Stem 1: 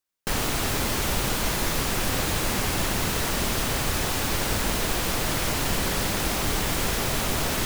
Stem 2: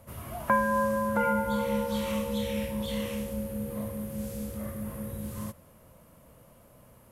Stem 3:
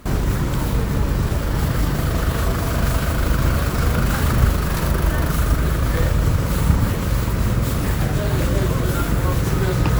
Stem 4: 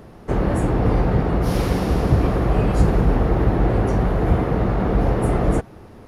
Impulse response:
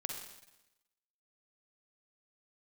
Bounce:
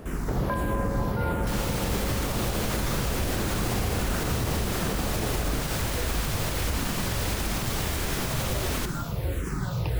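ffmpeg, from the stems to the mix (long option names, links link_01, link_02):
-filter_complex "[0:a]adelay=1200,volume=-6.5dB,asplit=2[link_01][link_02];[link_02]volume=-5.5dB[link_03];[1:a]volume=-4.5dB[link_04];[2:a]asplit=2[link_05][link_06];[link_06]afreqshift=-1.5[link_07];[link_05][link_07]amix=inputs=2:normalize=1,volume=-10dB,asplit=2[link_08][link_09];[link_09]volume=-9.5dB[link_10];[3:a]acompressor=threshold=-23dB:ratio=6,volume=-1.5dB[link_11];[4:a]atrim=start_sample=2205[link_12];[link_03][link_10]amix=inputs=2:normalize=0[link_13];[link_13][link_12]afir=irnorm=-1:irlink=0[link_14];[link_01][link_04][link_08][link_11][link_14]amix=inputs=5:normalize=0,alimiter=limit=-17.5dB:level=0:latency=1:release=85"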